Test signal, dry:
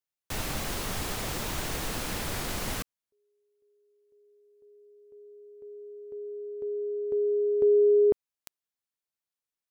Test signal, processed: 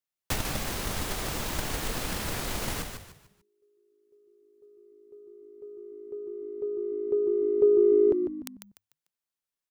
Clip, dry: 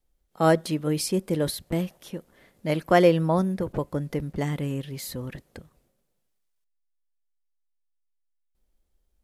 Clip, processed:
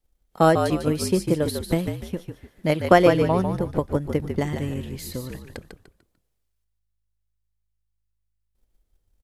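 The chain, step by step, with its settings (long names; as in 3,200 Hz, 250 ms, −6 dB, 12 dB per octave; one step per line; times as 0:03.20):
transient designer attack +8 dB, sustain −1 dB
echo with shifted repeats 148 ms, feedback 34%, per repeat −53 Hz, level −6.5 dB
level −1 dB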